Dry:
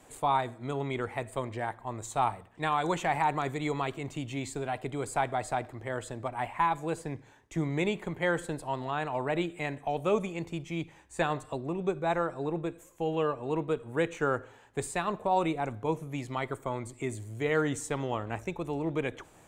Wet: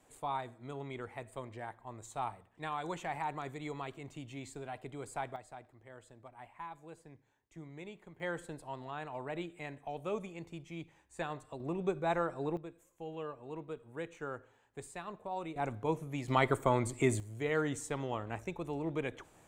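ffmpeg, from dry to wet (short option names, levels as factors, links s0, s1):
-af "asetnsamples=n=441:p=0,asendcmd='5.36 volume volume -18.5dB;8.2 volume volume -10dB;11.6 volume volume -3.5dB;12.57 volume volume -13dB;15.56 volume volume -3dB;16.28 volume volume 5dB;17.2 volume volume -5dB',volume=0.316"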